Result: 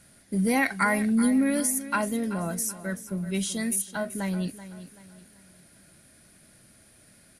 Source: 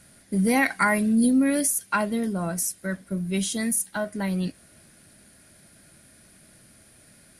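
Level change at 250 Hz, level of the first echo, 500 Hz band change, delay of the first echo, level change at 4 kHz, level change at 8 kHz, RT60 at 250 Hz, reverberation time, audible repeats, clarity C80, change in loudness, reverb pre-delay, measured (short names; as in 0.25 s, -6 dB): -2.5 dB, -14.0 dB, -2.5 dB, 0.382 s, -2.5 dB, -2.5 dB, none, none, 3, none, -2.5 dB, none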